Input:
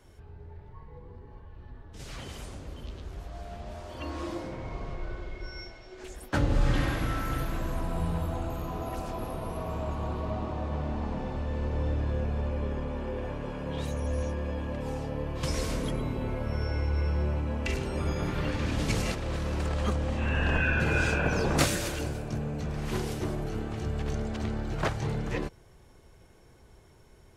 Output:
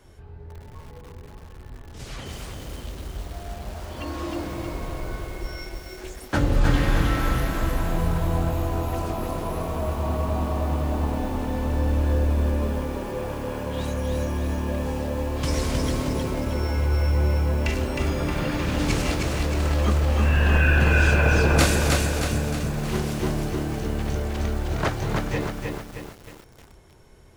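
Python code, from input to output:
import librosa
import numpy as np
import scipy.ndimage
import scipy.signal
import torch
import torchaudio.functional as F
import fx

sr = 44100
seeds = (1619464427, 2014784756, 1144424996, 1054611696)

y = fx.doubler(x, sr, ms=24.0, db=-12.5)
y = fx.echo_crushed(y, sr, ms=312, feedback_pct=55, bits=8, wet_db=-3.0)
y = y * 10.0 ** (4.0 / 20.0)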